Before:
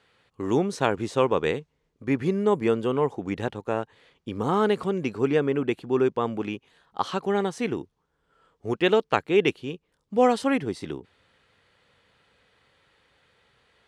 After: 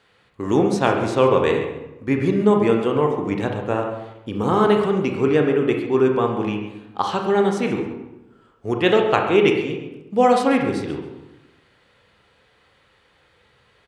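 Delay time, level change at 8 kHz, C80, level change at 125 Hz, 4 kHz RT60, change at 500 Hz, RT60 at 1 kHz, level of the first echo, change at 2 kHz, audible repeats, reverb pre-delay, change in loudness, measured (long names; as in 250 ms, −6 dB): 136 ms, can't be measured, 6.5 dB, +6.5 dB, 0.65 s, +6.0 dB, 0.90 s, −13.5 dB, +5.5 dB, 1, 26 ms, +6.0 dB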